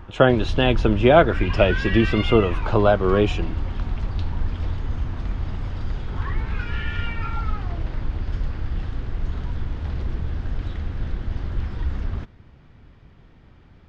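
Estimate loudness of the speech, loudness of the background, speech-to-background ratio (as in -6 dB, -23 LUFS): -19.0 LUFS, -29.0 LUFS, 10.0 dB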